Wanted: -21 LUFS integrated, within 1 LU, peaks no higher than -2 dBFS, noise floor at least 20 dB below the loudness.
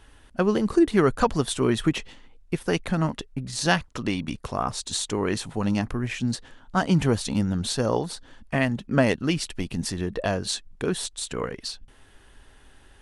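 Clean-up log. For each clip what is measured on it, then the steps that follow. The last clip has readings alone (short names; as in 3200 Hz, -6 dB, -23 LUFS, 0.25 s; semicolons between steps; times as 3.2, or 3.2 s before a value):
loudness -26.0 LUFS; peak -4.0 dBFS; loudness target -21.0 LUFS
-> gain +5 dB; limiter -2 dBFS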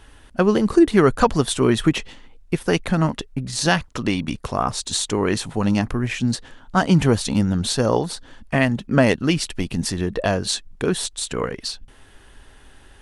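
loudness -21.0 LUFS; peak -2.0 dBFS; noise floor -49 dBFS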